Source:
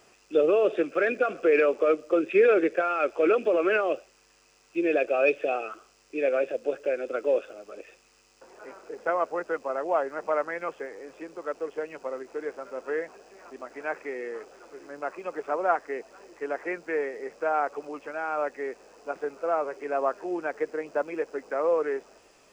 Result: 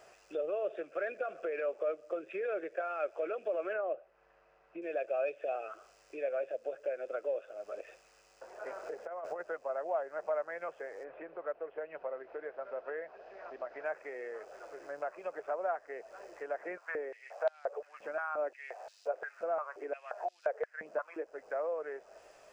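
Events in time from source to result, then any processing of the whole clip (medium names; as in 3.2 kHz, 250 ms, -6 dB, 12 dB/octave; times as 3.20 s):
3.73–4.82 s: low-pass 1.7 kHz
8.66–9.41 s: compressor with a negative ratio -32 dBFS, ratio -0.5
11.03–13.84 s: low-pass 2.6 kHz -> 4.7 kHz 24 dB/octave
16.60–21.26 s: step-sequenced high-pass 5.7 Hz 210–3900 Hz
whole clip: compression 2.5:1, threshold -41 dBFS; fifteen-band graphic EQ 250 Hz -8 dB, 630 Hz +12 dB, 1.6 kHz +6 dB; trim -5 dB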